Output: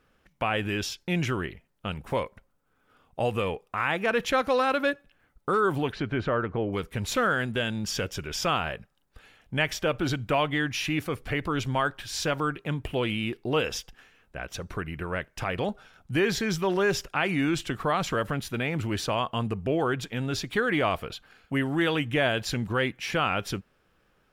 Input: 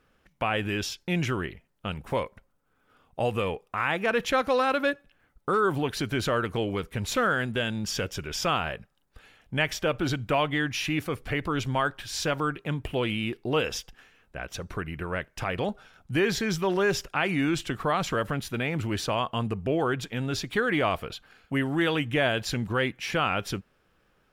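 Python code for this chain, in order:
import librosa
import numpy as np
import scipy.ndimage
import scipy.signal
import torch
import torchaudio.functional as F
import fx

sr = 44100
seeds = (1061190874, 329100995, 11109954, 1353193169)

y = fx.lowpass(x, sr, hz=fx.line((5.91, 2800.0), (6.72, 1300.0)), slope=12, at=(5.91, 6.72), fade=0.02)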